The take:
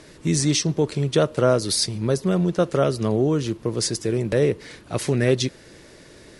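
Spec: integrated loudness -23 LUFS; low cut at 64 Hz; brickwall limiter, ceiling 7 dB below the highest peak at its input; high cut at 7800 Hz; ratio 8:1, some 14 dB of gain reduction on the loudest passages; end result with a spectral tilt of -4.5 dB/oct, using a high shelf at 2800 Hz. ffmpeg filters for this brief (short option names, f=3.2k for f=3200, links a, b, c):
-af "highpass=64,lowpass=7.8k,highshelf=f=2.8k:g=7,acompressor=threshold=-28dB:ratio=8,volume=10.5dB,alimiter=limit=-11.5dB:level=0:latency=1"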